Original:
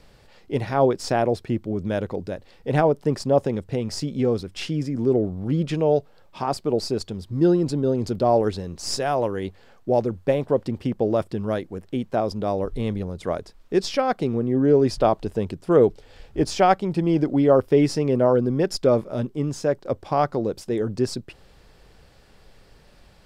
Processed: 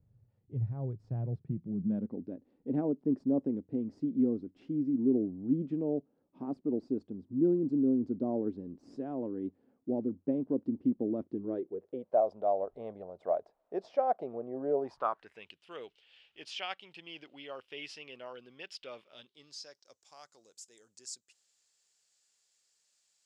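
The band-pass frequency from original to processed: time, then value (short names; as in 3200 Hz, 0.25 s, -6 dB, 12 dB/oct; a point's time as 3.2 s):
band-pass, Q 4.9
1.07 s 110 Hz
2.27 s 270 Hz
11.26 s 270 Hz
12.25 s 660 Hz
14.77 s 660 Hz
15.48 s 2900 Hz
19.07 s 2900 Hz
20.07 s 7100 Hz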